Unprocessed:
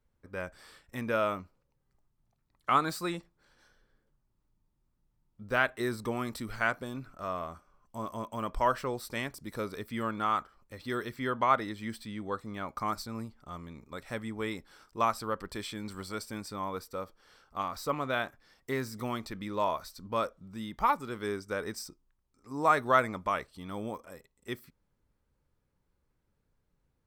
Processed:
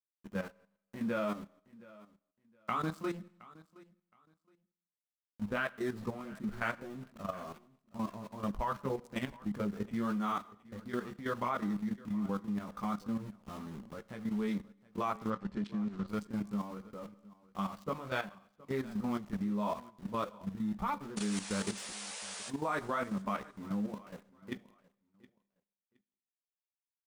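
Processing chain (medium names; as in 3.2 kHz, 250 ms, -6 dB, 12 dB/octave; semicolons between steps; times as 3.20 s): local Wiener filter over 15 samples; in parallel at 0 dB: compression 6:1, threshold -43 dBFS, peak gain reduction 22.5 dB; on the sum: small samples zeroed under -42 dBFS; 21.16–22.49 s: painted sound noise 430–10000 Hz -36 dBFS; chorus voices 2, 0.83 Hz, delay 17 ms, depth 3.2 ms; peaking EQ 200 Hz +14.5 dB 0.35 oct; Schroeder reverb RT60 0.73 s, combs from 31 ms, DRR 18 dB; level held to a coarse grid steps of 11 dB; 15.30–16.08 s: distance through air 98 m; on a send: feedback delay 718 ms, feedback 22%, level -21 dB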